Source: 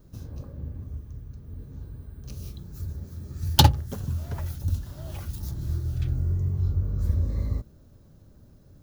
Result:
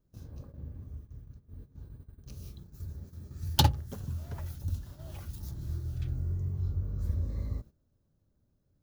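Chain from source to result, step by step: gate -39 dBFS, range -13 dB; trim -7 dB

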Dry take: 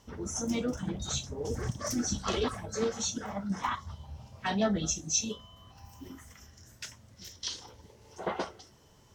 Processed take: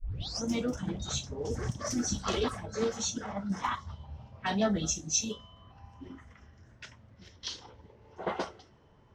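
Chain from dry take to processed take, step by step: tape start-up on the opening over 0.43 s; level-controlled noise filter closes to 1.9 kHz, open at -27 dBFS

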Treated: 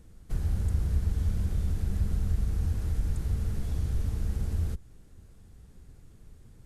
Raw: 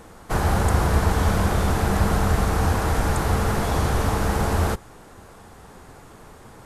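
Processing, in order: amplifier tone stack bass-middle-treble 10-0-1; in parallel at 0 dB: compression, threshold -37 dBFS, peak gain reduction 14 dB

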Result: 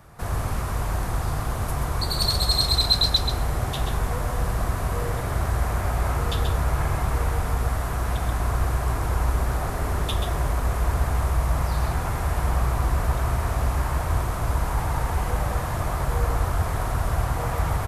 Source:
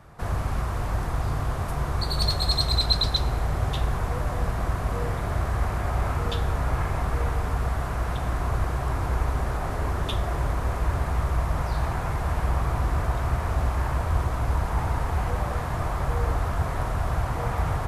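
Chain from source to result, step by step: treble shelf 7.2 kHz +11 dB; delay 132 ms -5.5 dB

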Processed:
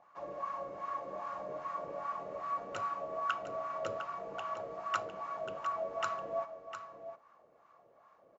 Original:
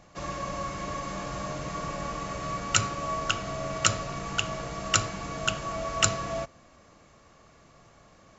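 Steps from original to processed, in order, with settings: wah-wah 2.5 Hz 480–1200 Hz, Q 3; delay 705 ms -10 dB

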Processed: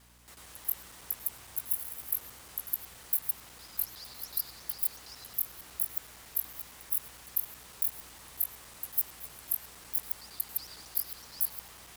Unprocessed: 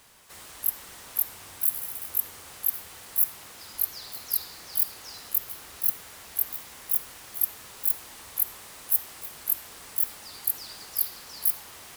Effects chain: time reversed locally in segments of 92 ms; hum 60 Hz, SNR 25 dB; trim -5.5 dB

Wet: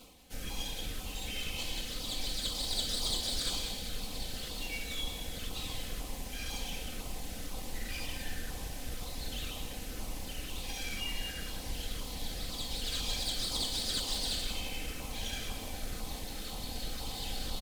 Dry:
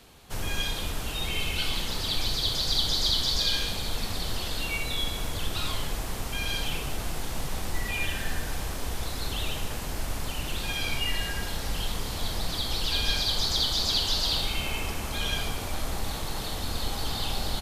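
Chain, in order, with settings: comb filter that takes the minimum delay 3.9 ms; reverse; upward compressor, threshold -34 dBFS; reverse; LFO notch saw down 2 Hz 820–1800 Hz; delay 185 ms -8.5 dB; trim -6.5 dB

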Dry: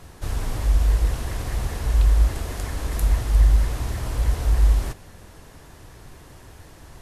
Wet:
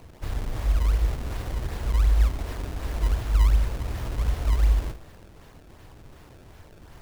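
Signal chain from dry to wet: on a send at -16 dB: reverberation RT60 0.80 s, pre-delay 50 ms; on the sum: decimation with a swept rate 25×, swing 160% 2.7 Hz; trim -3.5 dB

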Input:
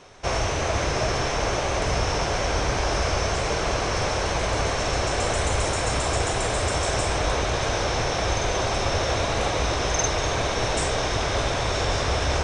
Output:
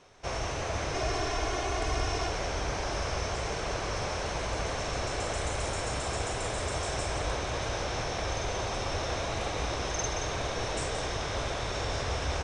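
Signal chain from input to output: 0.94–2.29 s: comb 2.8 ms, depth 71%; delay 175 ms -7.5 dB; trim -9 dB

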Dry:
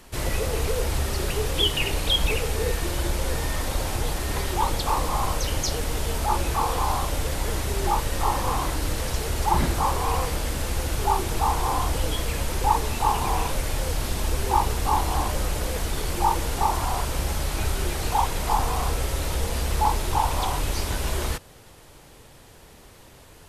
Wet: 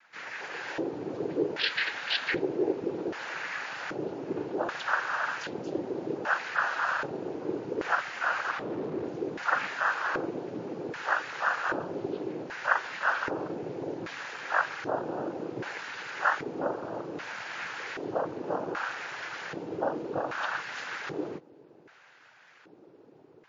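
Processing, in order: level rider gain up to 5 dB; noise-vocoded speech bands 8; 8.51–9.05 s: Schmitt trigger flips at -30 dBFS; LFO band-pass square 0.64 Hz 360–1700 Hz; MP3 32 kbps 16 kHz

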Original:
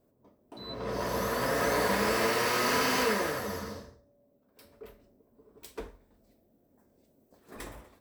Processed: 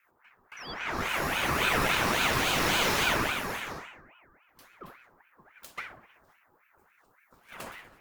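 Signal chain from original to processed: band-passed feedback delay 63 ms, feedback 79%, band-pass 850 Hz, level -9 dB; ring modulator with a swept carrier 1.3 kHz, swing 55%, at 3.6 Hz; trim +3.5 dB

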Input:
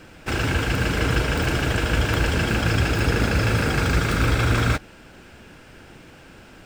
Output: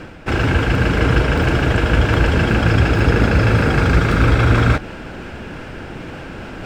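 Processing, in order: low-pass 2 kHz 6 dB/octave; reverse; upward compressor, threshold -28 dBFS; reverse; trim +7 dB

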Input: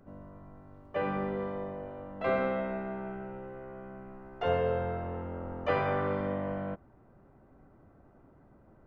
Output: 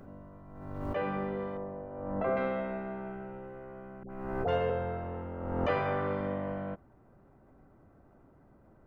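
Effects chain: 1.57–2.37 s: low-pass 1.4 kHz 12 dB/octave; 4.03–4.70 s: phase dispersion highs, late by 71 ms, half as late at 670 Hz; swell ahead of each attack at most 39 dB/s; trim -1.5 dB

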